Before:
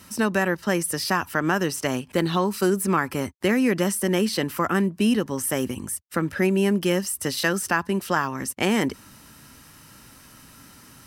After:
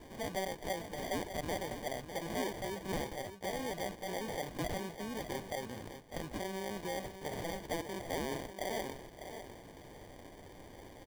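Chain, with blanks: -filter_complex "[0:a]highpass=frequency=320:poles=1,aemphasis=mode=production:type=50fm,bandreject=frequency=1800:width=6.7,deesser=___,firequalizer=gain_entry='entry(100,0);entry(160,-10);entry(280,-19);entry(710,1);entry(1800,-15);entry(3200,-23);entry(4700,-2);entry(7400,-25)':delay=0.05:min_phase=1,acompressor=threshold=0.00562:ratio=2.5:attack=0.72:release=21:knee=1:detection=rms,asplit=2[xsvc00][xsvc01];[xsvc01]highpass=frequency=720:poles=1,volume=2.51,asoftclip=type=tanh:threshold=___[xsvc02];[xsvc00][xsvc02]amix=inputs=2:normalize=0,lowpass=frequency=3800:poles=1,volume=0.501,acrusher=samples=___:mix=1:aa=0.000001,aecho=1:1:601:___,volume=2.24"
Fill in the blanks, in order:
0.75, 0.0237, 33, 0.316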